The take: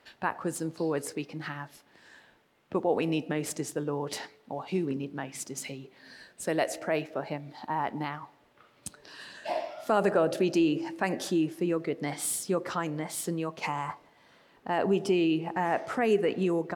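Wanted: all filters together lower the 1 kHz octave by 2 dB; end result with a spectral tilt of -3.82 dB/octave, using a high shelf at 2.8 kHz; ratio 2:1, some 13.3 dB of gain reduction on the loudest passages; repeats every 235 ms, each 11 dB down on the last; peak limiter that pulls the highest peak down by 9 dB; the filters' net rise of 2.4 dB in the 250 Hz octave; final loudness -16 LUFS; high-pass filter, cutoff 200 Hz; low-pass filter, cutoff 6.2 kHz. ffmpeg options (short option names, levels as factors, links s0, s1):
-af "highpass=200,lowpass=6200,equalizer=f=250:t=o:g=5.5,equalizer=f=1000:t=o:g=-4,highshelf=f=2800:g=7,acompressor=threshold=0.00562:ratio=2,alimiter=level_in=2.66:limit=0.0631:level=0:latency=1,volume=0.376,aecho=1:1:235|470|705:0.282|0.0789|0.0221,volume=21.1"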